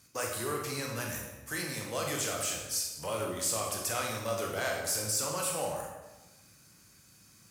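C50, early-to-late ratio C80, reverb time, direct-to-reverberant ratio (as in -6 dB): 2.5 dB, 5.0 dB, 1.1 s, -1.0 dB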